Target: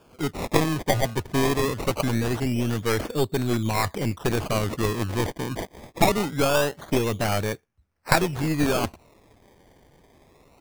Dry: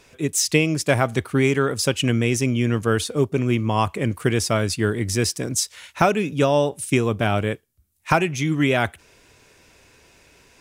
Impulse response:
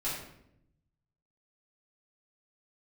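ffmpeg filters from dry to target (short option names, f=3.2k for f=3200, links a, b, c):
-af "highshelf=f=5.2k:t=q:w=1.5:g=-8,acrusher=samples=22:mix=1:aa=0.000001:lfo=1:lforange=22:lforate=0.23,aeval=exprs='0.794*(cos(1*acos(clip(val(0)/0.794,-1,1)))-cos(1*PI/2))+0.282*(cos(4*acos(clip(val(0)/0.794,-1,1)))-cos(4*PI/2))+0.0631*(cos(6*acos(clip(val(0)/0.794,-1,1)))-cos(6*PI/2))':c=same,volume=-2dB"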